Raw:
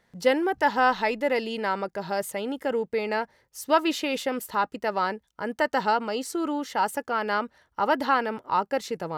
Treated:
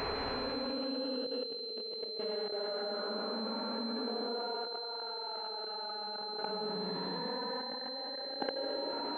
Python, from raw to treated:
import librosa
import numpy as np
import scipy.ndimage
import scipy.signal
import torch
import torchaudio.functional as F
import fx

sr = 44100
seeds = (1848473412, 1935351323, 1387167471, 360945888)

p1 = np.flip(x).copy()
p2 = fx.peak_eq(p1, sr, hz=430.0, db=7.5, octaves=0.68)
p3 = fx.quant_float(p2, sr, bits=2)
p4 = p2 + (p3 * 10.0 ** (-10.0 / 20.0))
p5 = fx.dereverb_blind(p4, sr, rt60_s=1.3)
p6 = fx.echo_diffused(p5, sr, ms=1089, feedback_pct=53, wet_db=-14.5)
p7 = fx.paulstretch(p6, sr, seeds[0], factor=16.0, window_s=0.1, from_s=2.91)
p8 = fx.level_steps(p7, sr, step_db=21)
p9 = scipy.signal.sosfilt(scipy.signal.butter(2, 230.0, 'highpass', fs=sr, output='sos'), p8)
p10 = fx.peak_eq(p9, sr, hz=1100.0, db=-7.0, octaves=2.0)
p11 = fx.over_compress(p10, sr, threshold_db=-39.0, ratio=-1.0)
y = fx.pwm(p11, sr, carrier_hz=4100.0)